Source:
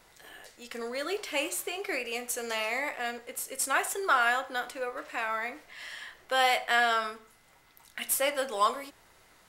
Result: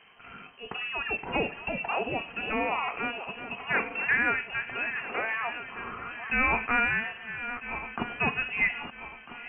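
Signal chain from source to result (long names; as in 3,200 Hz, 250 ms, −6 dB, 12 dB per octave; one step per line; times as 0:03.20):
feedback delay that plays each chunk backwards 649 ms, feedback 61%, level −12.5 dB
low-pass that shuts in the quiet parts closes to 2,300 Hz, open at −24 dBFS
in parallel at −0.5 dB: downward compressor, threshold −38 dBFS, peak gain reduction 17 dB
on the sum: voice inversion scrambler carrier 3,100 Hz
hollow resonant body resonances 210/430/700 Hz, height 10 dB, ringing for 30 ms
level −2.5 dB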